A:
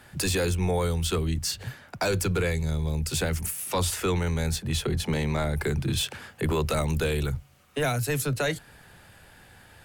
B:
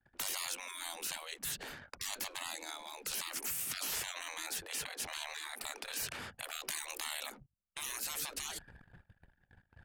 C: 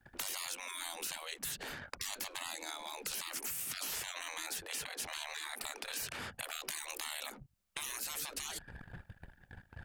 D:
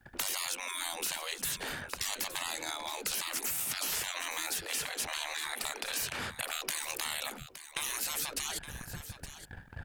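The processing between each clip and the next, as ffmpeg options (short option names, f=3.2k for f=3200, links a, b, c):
-af "anlmdn=0.01,afftfilt=real='re*lt(hypot(re,im),0.0316)':imag='im*lt(hypot(re,im),0.0316)':win_size=1024:overlap=0.75,agate=range=-19dB:threshold=-55dB:ratio=16:detection=peak"
-af "acompressor=threshold=-54dB:ratio=2.5,volume=10.5dB"
-af "aecho=1:1:867:0.224,volume=5.5dB"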